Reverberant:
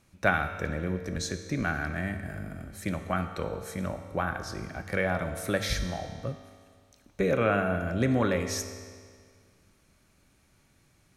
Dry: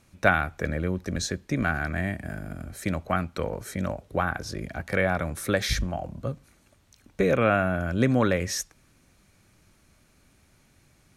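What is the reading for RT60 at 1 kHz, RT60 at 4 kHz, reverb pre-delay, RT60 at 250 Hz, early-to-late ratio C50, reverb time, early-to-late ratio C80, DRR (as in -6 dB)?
1.9 s, 1.7 s, 4 ms, 1.9 s, 8.5 dB, 1.9 s, 9.5 dB, 7.0 dB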